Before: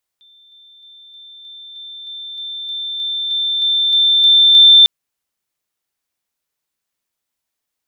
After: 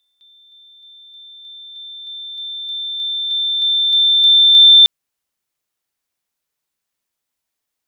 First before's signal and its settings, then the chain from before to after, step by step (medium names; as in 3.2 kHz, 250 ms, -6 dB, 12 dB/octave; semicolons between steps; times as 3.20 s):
level ladder 3.56 kHz -45.5 dBFS, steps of 3 dB, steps 15, 0.31 s 0.00 s
pre-echo 246 ms -19 dB